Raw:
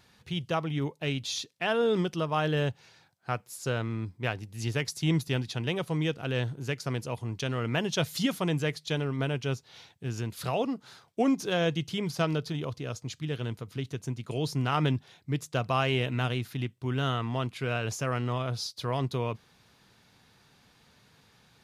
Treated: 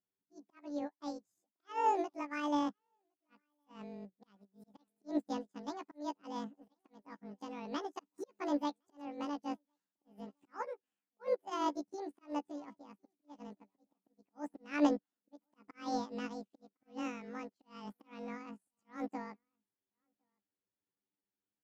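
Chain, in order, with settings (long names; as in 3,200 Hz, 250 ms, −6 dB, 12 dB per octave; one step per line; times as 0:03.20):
pitch shift by two crossfaded delay taps +11.5 semitones
low-pass filter 1,300 Hz 6 dB per octave
volume swells 172 ms
single-tap delay 1,062 ms −20 dB
expander for the loud parts 2.5 to 1, over −48 dBFS
level +1.5 dB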